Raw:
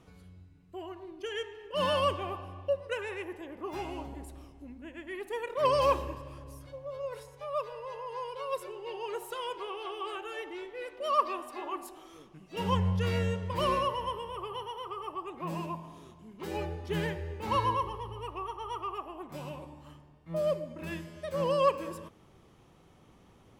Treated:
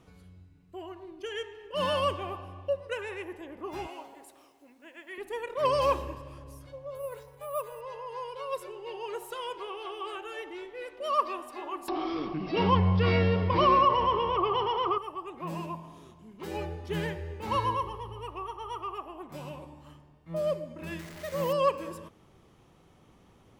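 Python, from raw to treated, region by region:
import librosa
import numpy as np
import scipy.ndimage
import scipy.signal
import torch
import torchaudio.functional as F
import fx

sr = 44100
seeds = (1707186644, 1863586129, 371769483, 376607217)

y = fx.chain(x, sr, fx.highpass(hz=510.0, slope=12),
    fx.quant_dither(seeds[0], bits=12, dither='none'), at=(3.87, 5.18))
y = fx.chain(y, sr, fx.high_shelf(hz=6000.0, db=-10.5),
    fx.resample_bad(factor=4, down='filtered', up='hold'), at=(6.95, 7.81))
y = fx.chain(y, sr, fx.small_body(hz=(320.0, 720.0, 1100.0, 2200.0), ring_ms=30, db=10),
    fx.resample_bad(factor=4, down='none', up='filtered'),
    fx.env_flatten(amount_pct=50), at=(11.88, 14.98))
y = fx.chain(y, sr, fx.delta_mod(bps=64000, step_db=-39.5),
    fx.peak_eq(hz=2000.0, db=8.0, octaves=0.27),
    fx.resample_bad(factor=3, down='none', up='hold'), at=(20.99, 21.53))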